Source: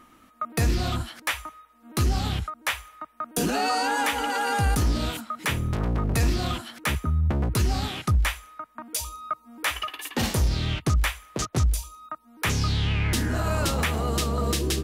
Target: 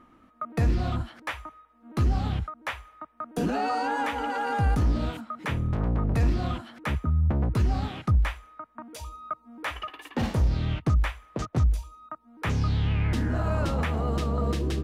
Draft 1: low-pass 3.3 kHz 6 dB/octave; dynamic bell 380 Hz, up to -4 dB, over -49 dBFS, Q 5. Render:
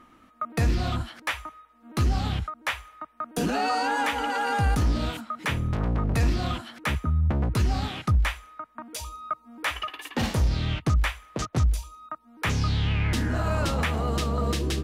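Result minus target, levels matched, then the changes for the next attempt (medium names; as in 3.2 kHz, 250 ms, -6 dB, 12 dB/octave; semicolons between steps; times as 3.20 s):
4 kHz band +6.5 dB
change: low-pass 1.1 kHz 6 dB/octave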